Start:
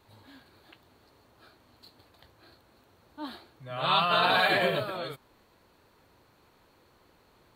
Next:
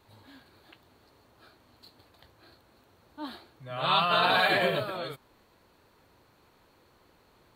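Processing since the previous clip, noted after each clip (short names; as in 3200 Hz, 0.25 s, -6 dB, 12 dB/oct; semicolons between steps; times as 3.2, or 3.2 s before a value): nothing audible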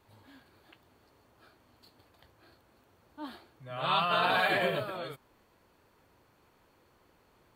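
bell 4000 Hz -7 dB 0.23 oct; gain -3 dB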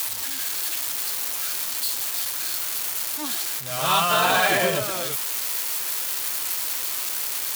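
switching spikes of -23.5 dBFS; gain +7 dB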